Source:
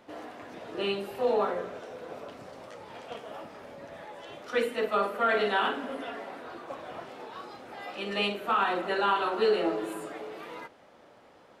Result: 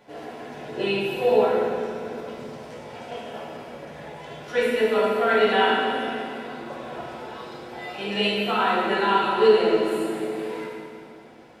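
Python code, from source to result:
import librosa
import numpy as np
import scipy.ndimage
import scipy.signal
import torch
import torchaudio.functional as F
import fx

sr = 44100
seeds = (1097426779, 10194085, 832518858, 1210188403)

y = fx.notch(x, sr, hz=1200.0, q=6.1)
y = fx.rev_fdn(y, sr, rt60_s=2.1, lf_ratio=1.6, hf_ratio=0.95, size_ms=41.0, drr_db=-5.5)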